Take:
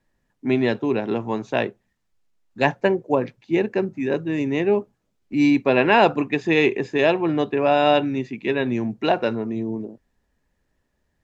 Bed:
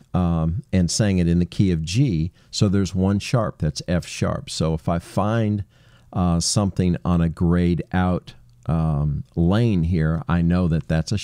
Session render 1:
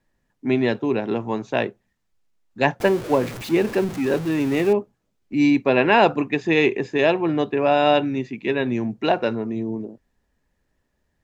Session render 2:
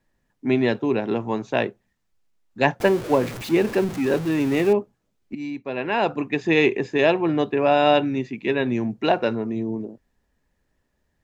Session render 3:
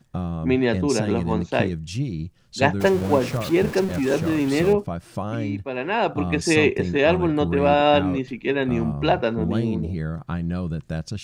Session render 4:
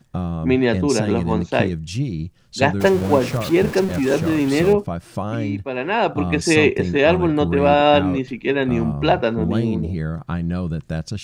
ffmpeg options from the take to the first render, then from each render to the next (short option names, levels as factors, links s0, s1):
-filter_complex "[0:a]asettb=1/sr,asplit=3[s0][s1][s2];[s0]atrim=end=2.804[s3];[s1]atrim=start=2.8:end=4.73,asetpts=PTS-STARTPTS,afade=t=in:d=0.004:c=qsin,afade=t=out:st=1.926:d=0.004:c=qsin,aeval=exprs='val(0)+0.5*0.0398*sgn(val(0))':c=same[s4];[s2]atrim=start=4.726[s5];[s3][s4]acrossfade=d=0.004:c1=hsin:c2=qsin[s6];[s6][s5]acrossfade=d=0.004:c1=qsin:c2=hsin"
-filter_complex "[0:a]asplit=2[s0][s1];[s0]atrim=end=5.35,asetpts=PTS-STARTPTS,afade=t=out:st=5.346:d=0.004:c=hsin:silence=0.188365[s2];[s1]atrim=start=5.35,asetpts=PTS-STARTPTS,afade=t=in:d=1.1:c=qua:silence=0.188365[s3];[s2][s3]concat=n=2:v=0:a=1"
-filter_complex "[1:a]volume=0.422[s0];[0:a][s0]amix=inputs=2:normalize=0"
-af "volume=1.41,alimiter=limit=0.891:level=0:latency=1"